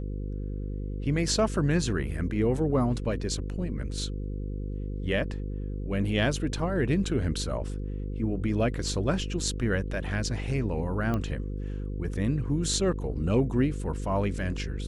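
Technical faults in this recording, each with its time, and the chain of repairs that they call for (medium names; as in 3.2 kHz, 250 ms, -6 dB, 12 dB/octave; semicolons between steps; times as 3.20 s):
buzz 50 Hz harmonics 10 -33 dBFS
11.14 s: pop -18 dBFS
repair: de-click; de-hum 50 Hz, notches 10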